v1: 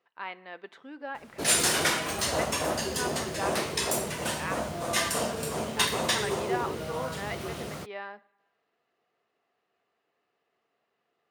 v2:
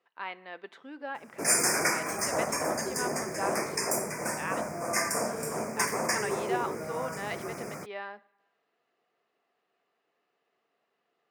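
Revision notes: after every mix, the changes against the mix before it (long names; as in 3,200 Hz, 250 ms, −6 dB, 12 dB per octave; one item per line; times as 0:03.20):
background: add Chebyshev band-stop filter 2,400–4,900 Hz, order 4
master: add high-pass filter 150 Hz 12 dB per octave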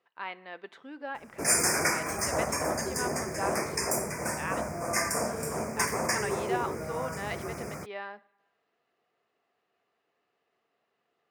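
master: remove high-pass filter 150 Hz 12 dB per octave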